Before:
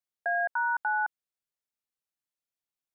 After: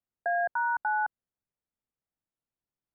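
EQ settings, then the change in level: LPF 1600 Hz; low shelf 350 Hz +11 dB; 0.0 dB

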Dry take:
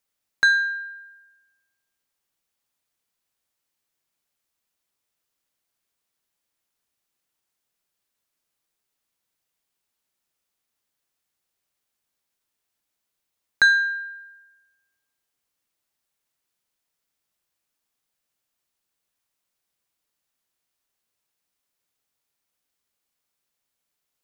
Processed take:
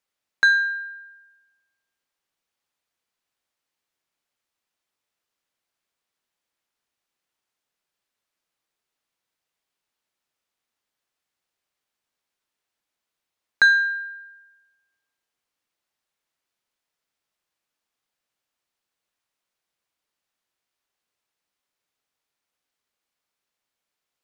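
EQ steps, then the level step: low shelf 270 Hz -6 dB; high shelf 6900 Hz -11 dB; +1.5 dB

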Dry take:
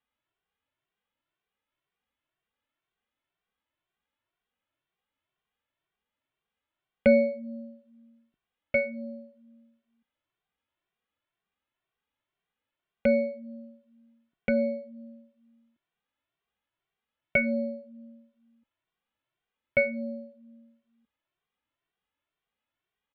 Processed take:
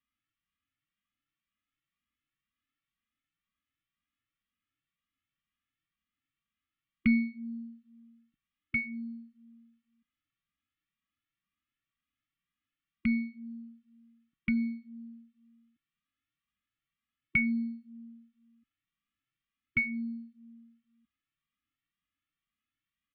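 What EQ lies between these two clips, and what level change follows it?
brick-wall FIR band-stop 330–1100 Hz; air absorption 140 m; notch 1500 Hz, Q 6; 0.0 dB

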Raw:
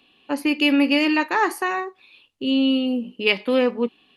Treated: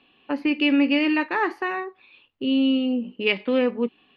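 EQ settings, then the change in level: bell 1700 Hz +3.5 dB 2.5 oct; dynamic EQ 1000 Hz, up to -6 dB, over -31 dBFS, Q 0.74; air absorption 290 m; 0.0 dB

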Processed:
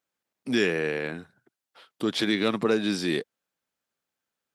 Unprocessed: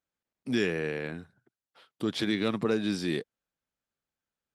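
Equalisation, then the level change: HPF 240 Hz 6 dB/oct; +5.5 dB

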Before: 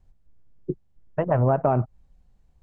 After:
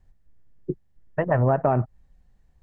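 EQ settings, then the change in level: bell 1800 Hz +9.5 dB 0.25 oct; 0.0 dB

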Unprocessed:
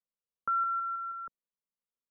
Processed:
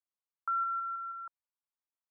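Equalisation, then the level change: resonant high-pass 850 Hz, resonance Q 1.7; LPF 1500 Hz; tilt +2 dB/oct; -4.0 dB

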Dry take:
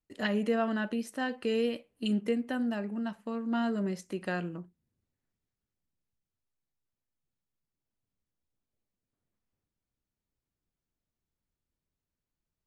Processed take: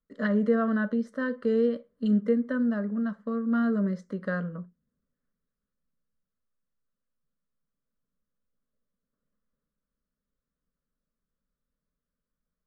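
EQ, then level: LPF 2600 Hz 12 dB/oct; fixed phaser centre 510 Hz, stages 8; notch 920 Hz, Q 5.9; +6.0 dB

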